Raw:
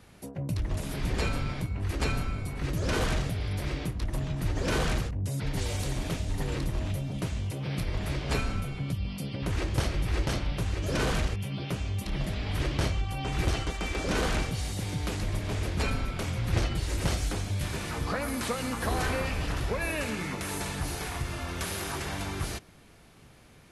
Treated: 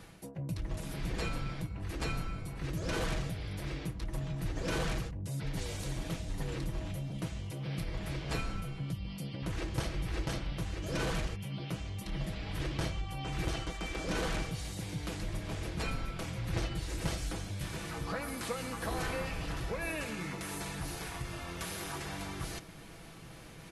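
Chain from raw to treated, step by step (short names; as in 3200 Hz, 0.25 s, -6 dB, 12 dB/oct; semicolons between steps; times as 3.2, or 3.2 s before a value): comb 6.1 ms, depth 40%; reverse; upward compressor, threshold -32 dBFS; reverse; gain -6.5 dB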